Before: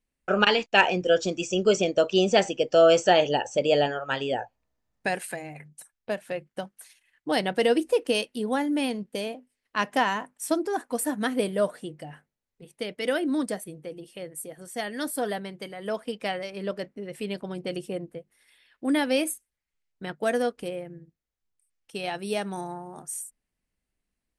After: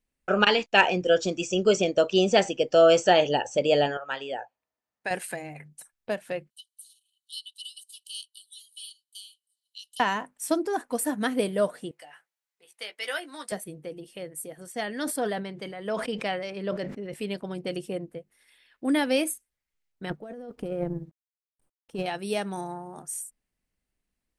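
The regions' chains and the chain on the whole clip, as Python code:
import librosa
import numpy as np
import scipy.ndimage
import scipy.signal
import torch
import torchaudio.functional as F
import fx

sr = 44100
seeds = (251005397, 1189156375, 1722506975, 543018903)

y = fx.chain(x, sr, fx.highpass(hz=830.0, slope=6),
    fx.high_shelf(hz=2600.0, db=-7.5), at=(3.97, 5.11))
y = fx.chain(y, sr, fx.cheby_ripple_highpass(hz=2900.0, ripple_db=9),
    fx.band_squash(depth_pct=40), at=(6.5, 10.0))
y = fx.chain(y, sr, fx.highpass(hz=980.0, slope=12),
    fx.doubler(ms=14.0, db=-7.0), at=(11.91, 13.52))
y = fx.chain(y, sr, fx.air_absorb(metres=52.0),
    fx.sustainer(db_per_s=64.0), at=(14.72, 17.14))
y = fx.chain(y, sr, fx.law_mismatch(coded='A'),
    fx.tilt_shelf(db=8.5, hz=1100.0),
    fx.over_compress(threshold_db=-34.0, ratio=-1.0), at=(20.1, 22.06))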